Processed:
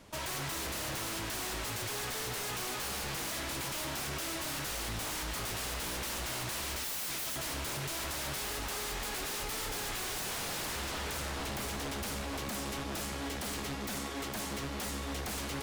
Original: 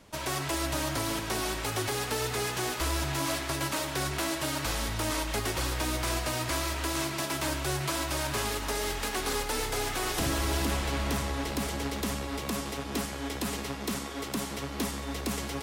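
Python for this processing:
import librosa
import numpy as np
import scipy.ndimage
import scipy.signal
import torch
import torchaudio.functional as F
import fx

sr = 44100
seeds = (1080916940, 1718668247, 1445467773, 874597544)

y = fx.high_shelf(x, sr, hz=2000.0, db=10.5, at=(6.76, 7.36))
y = 10.0 ** (-32.5 / 20.0) * (np.abs((y / 10.0 ** (-32.5 / 20.0) + 3.0) % 4.0 - 2.0) - 1.0)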